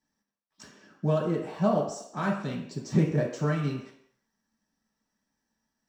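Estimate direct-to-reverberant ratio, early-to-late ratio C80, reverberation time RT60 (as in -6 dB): -4.5 dB, 8.5 dB, not exponential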